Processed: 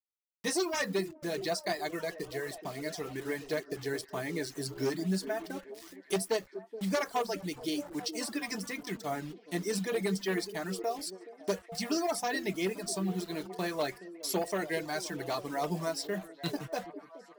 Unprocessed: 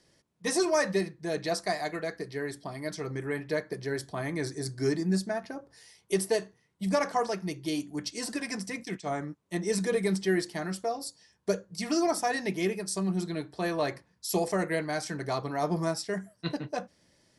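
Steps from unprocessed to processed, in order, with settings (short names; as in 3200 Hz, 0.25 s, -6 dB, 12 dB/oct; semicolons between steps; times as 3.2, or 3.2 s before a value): one-sided fold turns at -22 dBFS; HPF 110 Hz 12 dB/oct; bell 3700 Hz +3.5 dB 1 oct; in parallel at -0.5 dB: compressor 6:1, threshold -41 dBFS, peak gain reduction 17 dB; on the sum: bit-crush 7-bit; reverb removal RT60 0.7 s; flange 0.27 Hz, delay 2.3 ms, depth 4.2 ms, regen -73%; on a send: delay with a stepping band-pass 0.422 s, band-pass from 330 Hz, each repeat 0.7 oct, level -9.5 dB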